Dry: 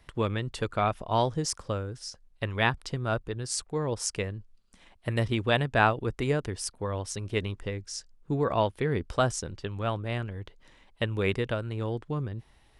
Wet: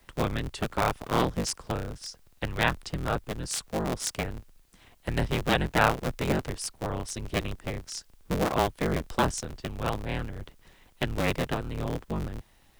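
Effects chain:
sub-harmonics by changed cycles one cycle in 3, inverted
frequency shifter −29 Hz
background noise white −70 dBFS

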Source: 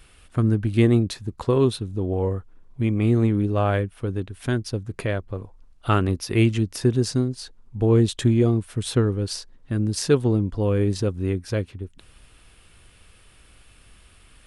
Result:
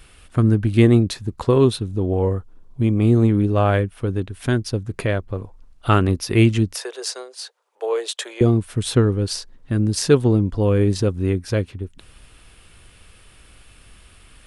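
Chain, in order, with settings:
0:02.38–0:03.29: parametric band 2,000 Hz −7 dB 0.91 octaves
0:06.74–0:08.41: Butterworth high-pass 460 Hz 48 dB per octave
level +4 dB

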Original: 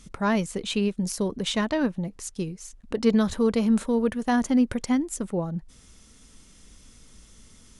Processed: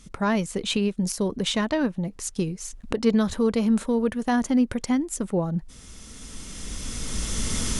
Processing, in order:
camcorder AGC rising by 11 dB per second

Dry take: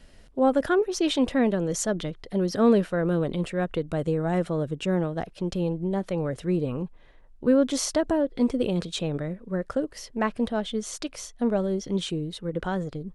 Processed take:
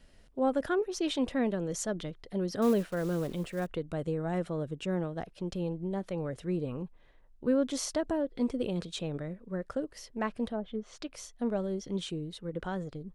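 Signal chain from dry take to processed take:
0:02.62–0:03.67: one scale factor per block 5 bits
0:10.48–0:11.12: treble cut that deepens with the level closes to 780 Hz, closed at −22.5 dBFS
level −7 dB

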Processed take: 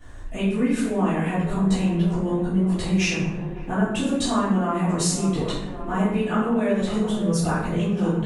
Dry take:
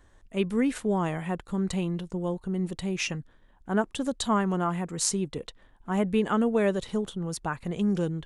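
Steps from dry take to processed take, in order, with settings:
downward compressor 6 to 1, threshold −36 dBFS, peak gain reduction 15.5 dB
delay with a band-pass on its return 558 ms, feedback 68%, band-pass 620 Hz, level −9.5 dB
convolution reverb RT60 0.80 s, pre-delay 4 ms, DRR −13 dB
level −1.5 dB

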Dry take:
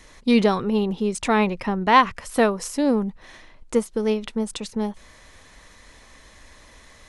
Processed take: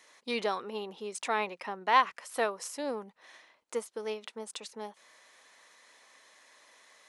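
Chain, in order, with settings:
high-pass filter 520 Hz 12 dB per octave
level −8 dB

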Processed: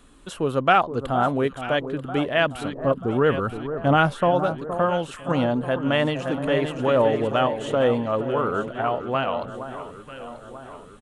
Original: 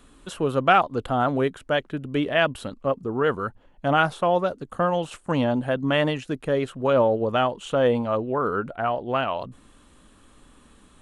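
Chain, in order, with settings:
0:02.78–0:04.31: low-shelf EQ 370 Hz +7 dB
0:05.61–0:06.70: delay throw 570 ms, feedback 40%, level −6 dB
delay that swaps between a low-pass and a high-pass 469 ms, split 1,300 Hz, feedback 71%, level −10 dB

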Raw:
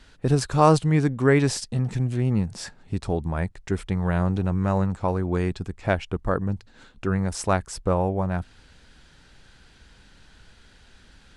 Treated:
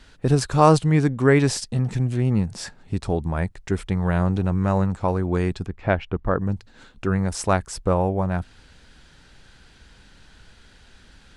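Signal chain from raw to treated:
0:05.66–0:06.41: low-pass filter 3,000 Hz 12 dB per octave
level +2 dB

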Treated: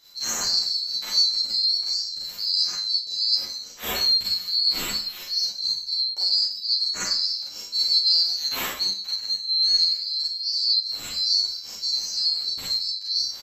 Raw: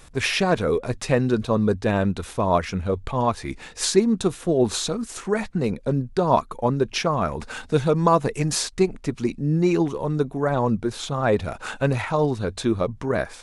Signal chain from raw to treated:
neighbouring bands swapped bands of 4,000 Hz
four-comb reverb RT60 0.47 s, combs from 31 ms, DRR −6.5 dB
barber-pole flanger 10.4 ms +0.52 Hz
level −6.5 dB

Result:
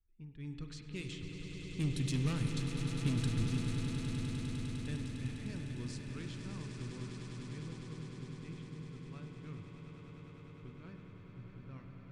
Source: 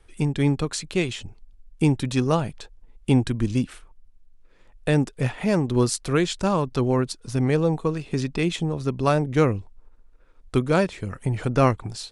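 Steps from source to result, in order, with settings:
source passing by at 0:02.56, 6 m/s, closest 3.2 metres
soft clipping −23.5 dBFS, distortion −8 dB
automatic gain control gain up to 9 dB
low-pass that shuts in the quiet parts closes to 1,100 Hz, open at −21 dBFS
guitar amp tone stack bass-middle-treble 6-0-2
echo that builds up and dies away 101 ms, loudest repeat 8, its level −10 dB
spring reverb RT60 3.2 s, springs 45 ms, chirp 50 ms, DRR 5 dB
level +2 dB

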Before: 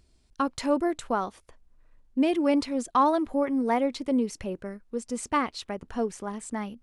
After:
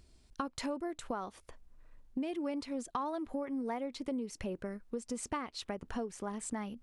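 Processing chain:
downward compressor 6 to 1, threshold −36 dBFS, peak gain reduction 17.5 dB
level +1 dB

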